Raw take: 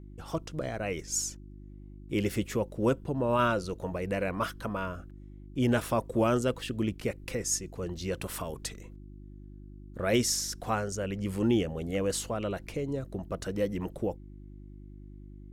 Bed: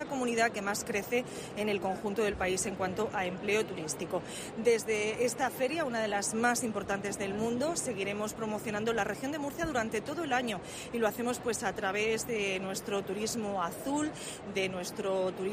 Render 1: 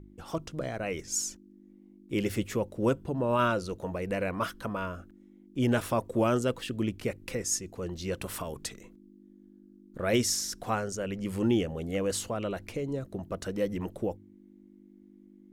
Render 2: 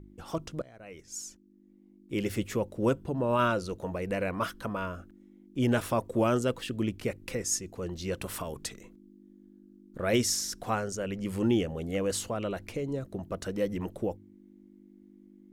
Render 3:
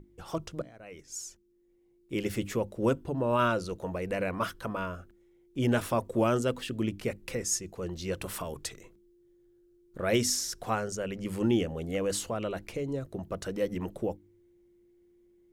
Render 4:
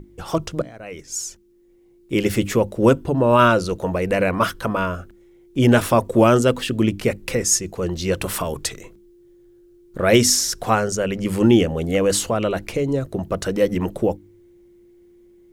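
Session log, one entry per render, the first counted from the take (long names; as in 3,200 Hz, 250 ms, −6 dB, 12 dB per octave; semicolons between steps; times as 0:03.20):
hum removal 50 Hz, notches 3
0:00.62–0:02.55: fade in, from −20.5 dB
mains-hum notches 50/100/150/200/250/300 Hz
level +12 dB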